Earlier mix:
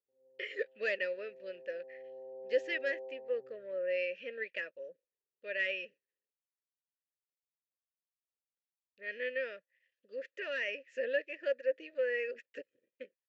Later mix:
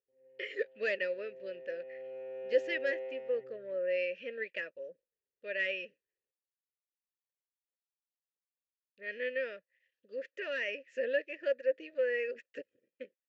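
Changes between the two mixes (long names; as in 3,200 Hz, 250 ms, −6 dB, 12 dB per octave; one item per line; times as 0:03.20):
background: remove Chebyshev low-pass with heavy ripple 1,100 Hz, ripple 3 dB
master: add low-shelf EQ 320 Hz +6 dB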